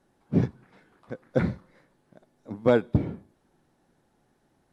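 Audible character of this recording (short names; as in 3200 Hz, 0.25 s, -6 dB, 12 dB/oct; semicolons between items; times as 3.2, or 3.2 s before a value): noise floor -69 dBFS; spectral tilt -6.5 dB/oct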